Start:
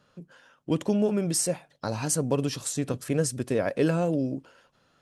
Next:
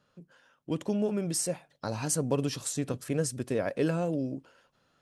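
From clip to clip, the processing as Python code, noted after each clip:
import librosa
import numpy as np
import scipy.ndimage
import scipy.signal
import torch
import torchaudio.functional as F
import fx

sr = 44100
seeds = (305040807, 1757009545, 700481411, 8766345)

y = fx.rider(x, sr, range_db=10, speed_s=2.0)
y = y * librosa.db_to_amplitude(-4.0)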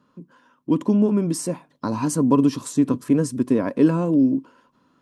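y = fx.small_body(x, sr, hz=(260.0, 1000.0), ring_ms=25, db=17)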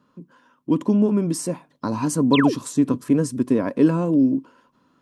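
y = fx.spec_paint(x, sr, seeds[0], shape='fall', start_s=2.33, length_s=0.22, low_hz=240.0, high_hz=4400.0, level_db=-24.0)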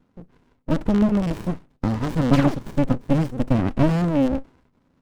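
y = fx.rattle_buzz(x, sr, strikes_db=-22.0, level_db=-18.0)
y = fx.running_max(y, sr, window=65)
y = y * librosa.db_to_amplitude(1.5)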